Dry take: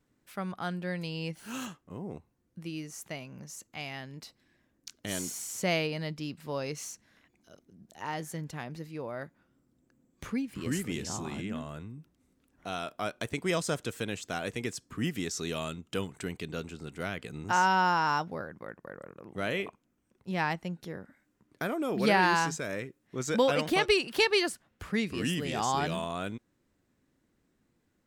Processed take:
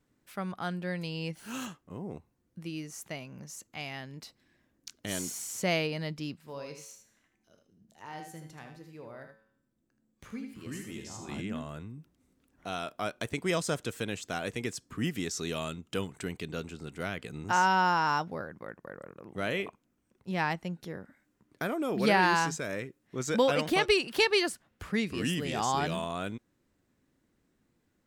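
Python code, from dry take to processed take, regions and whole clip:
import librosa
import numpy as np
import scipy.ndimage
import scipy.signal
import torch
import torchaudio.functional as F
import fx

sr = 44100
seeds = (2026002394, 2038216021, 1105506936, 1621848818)

y = fx.chain(x, sr, fx.comb_fb(f0_hz=110.0, decay_s=0.64, harmonics='all', damping=0.0, mix_pct=70),
    fx.echo_single(ms=78, db=-7.0), at=(6.37, 11.29))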